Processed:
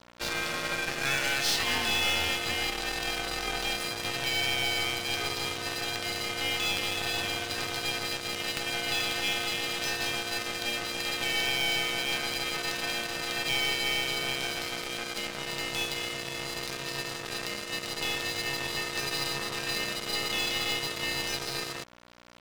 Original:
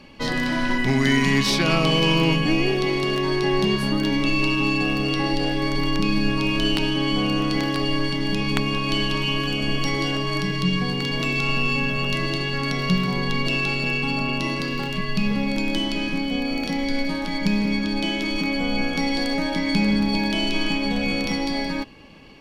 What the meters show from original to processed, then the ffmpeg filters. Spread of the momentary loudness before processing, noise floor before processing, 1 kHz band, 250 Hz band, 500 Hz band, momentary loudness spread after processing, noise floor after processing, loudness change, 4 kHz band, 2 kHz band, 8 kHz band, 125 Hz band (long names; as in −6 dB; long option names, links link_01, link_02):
6 LU, −27 dBFS, −7.5 dB, −19.5 dB, −10.5 dB, 7 LU, −38 dBFS, −7.0 dB, −3.0 dB, −5.0 dB, +4.5 dB, −18.0 dB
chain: -filter_complex "[0:a]highpass=270,tiltshelf=frequency=970:gain=-7,acrossover=split=360|2100[link_01][link_02][link_03];[link_01]alimiter=level_in=11dB:limit=-24dB:level=0:latency=1,volume=-11dB[link_04];[link_04][link_02][link_03]amix=inputs=3:normalize=0,aeval=exprs='val(0)+0.0282*(sin(2*PI*60*n/s)+sin(2*PI*2*60*n/s)/2+sin(2*PI*3*60*n/s)/3+sin(2*PI*4*60*n/s)/4+sin(2*PI*5*60*n/s)/5)':channel_layout=same,aeval=exprs='val(0)*sin(2*PI*410*n/s)':channel_layout=same,aeval=exprs='sgn(val(0))*max(abs(val(0))-0.0355,0)':channel_layout=same,aeval=exprs='(tanh(15.8*val(0)+0.45)-tanh(0.45))/15.8':channel_layout=same,volume=2.5dB"